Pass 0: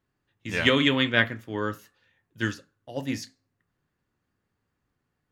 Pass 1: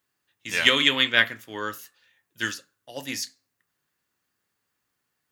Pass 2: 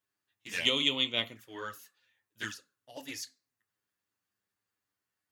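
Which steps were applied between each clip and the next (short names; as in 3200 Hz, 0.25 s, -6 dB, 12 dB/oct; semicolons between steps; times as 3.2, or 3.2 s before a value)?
tilt +3.5 dB/oct
envelope flanger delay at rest 10.1 ms, full sweep at -20.5 dBFS; gain -6.5 dB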